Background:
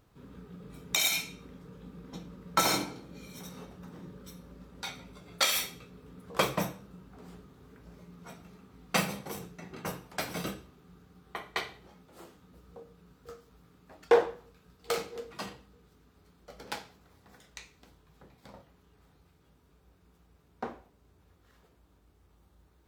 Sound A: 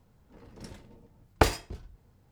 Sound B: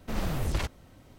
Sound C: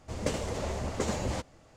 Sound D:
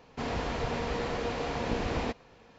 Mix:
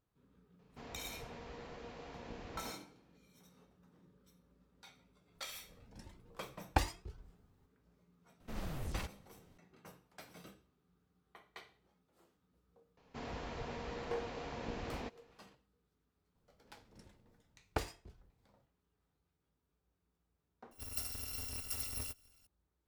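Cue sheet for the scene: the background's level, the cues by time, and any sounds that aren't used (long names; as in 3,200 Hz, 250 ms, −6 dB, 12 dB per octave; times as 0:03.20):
background −19.5 dB
0:00.59: mix in D −17.5 dB
0:05.35: mix in A −5.5 dB + flanger whose copies keep moving one way rising 1.3 Hz
0:08.40: mix in B −11.5 dB
0:12.97: mix in D −11.5 dB
0:16.35: mix in A −15 dB
0:20.71: mix in C −10 dB + samples in bit-reversed order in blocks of 256 samples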